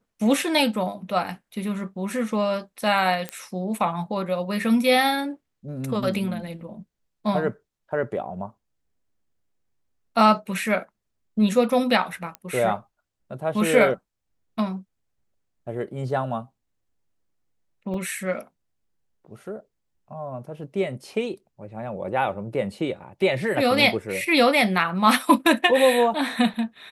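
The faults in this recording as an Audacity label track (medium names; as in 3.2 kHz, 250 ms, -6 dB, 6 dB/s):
3.290000	3.290000	pop -14 dBFS
12.350000	12.350000	pop -18 dBFS
17.940000	17.940000	dropout 2.7 ms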